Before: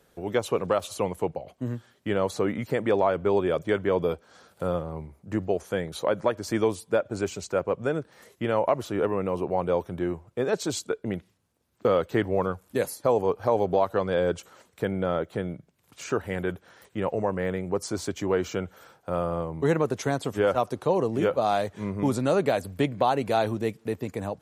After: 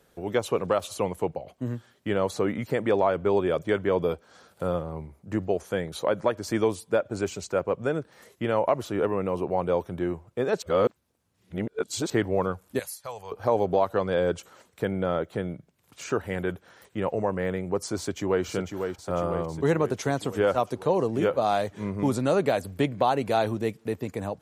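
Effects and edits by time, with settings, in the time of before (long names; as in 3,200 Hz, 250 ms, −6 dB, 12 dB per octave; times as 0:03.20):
0:10.62–0:12.10: reverse
0:12.79–0:13.32: guitar amp tone stack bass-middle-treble 10-0-10
0:17.98–0:18.45: delay throw 500 ms, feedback 65%, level −6 dB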